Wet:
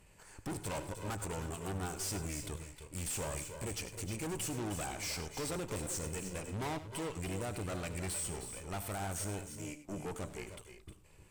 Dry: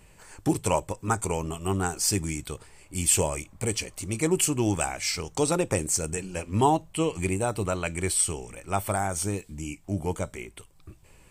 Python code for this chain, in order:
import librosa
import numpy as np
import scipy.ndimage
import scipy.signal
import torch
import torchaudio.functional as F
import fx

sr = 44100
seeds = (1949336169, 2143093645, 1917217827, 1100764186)

y = fx.highpass(x, sr, hz=fx.line((9.46, 250.0), (10.14, 90.0)), slope=12, at=(9.46, 10.14), fade=0.02)
y = fx.tube_stage(y, sr, drive_db=34.0, bias=0.8)
y = fx.echo_multitap(y, sr, ms=(76, 96, 103, 310, 312, 349), db=(-17.0, -17.0, -17.5, -12.0, -13.0, -17.0))
y = y * 10.0 ** (-2.5 / 20.0)